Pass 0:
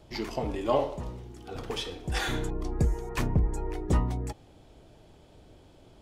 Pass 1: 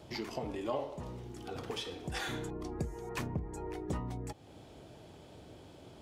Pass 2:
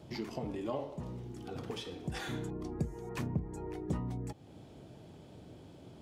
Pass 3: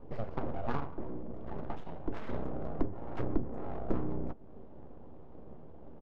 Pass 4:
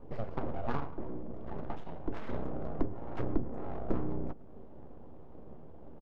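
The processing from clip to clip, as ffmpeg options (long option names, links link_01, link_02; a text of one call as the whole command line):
ffmpeg -i in.wav -af "highpass=84,acompressor=threshold=-46dB:ratio=2,volume=3dB" out.wav
ffmpeg -i in.wav -af "equalizer=frequency=170:width_type=o:width=2.1:gain=8,volume=-4dB" out.wav
ffmpeg -i in.wav -filter_complex "[0:a]aeval=exprs='abs(val(0))':channel_layout=same,asplit=2[link_01][link_02];[link_02]adelay=13,volume=-13dB[link_03];[link_01][link_03]amix=inputs=2:normalize=0,adynamicsmooth=sensitivity=3.5:basefreq=770,volume=6dB" out.wav
ffmpeg -i in.wav -af "aecho=1:1:105:0.0794" out.wav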